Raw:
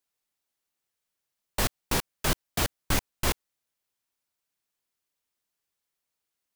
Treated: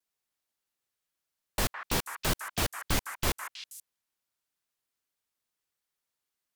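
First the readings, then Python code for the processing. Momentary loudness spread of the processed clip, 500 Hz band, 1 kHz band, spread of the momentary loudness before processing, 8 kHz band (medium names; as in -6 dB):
13 LU, -2.5 dB, -1.5 dB, 3 LU, -2.0 dB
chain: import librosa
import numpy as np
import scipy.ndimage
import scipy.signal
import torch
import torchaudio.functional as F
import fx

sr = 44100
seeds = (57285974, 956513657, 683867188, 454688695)

y = fx.vibrato(x, sr, rate_hz=0.41, depth_cents=15.0)
y = fx.echo_stepped(y, sr, ms=160, hz=1400.0, octaves=1.4, feedback_pct=70, wet_db=-3)
y = y * librosa.db_to_amplitude(-2.5)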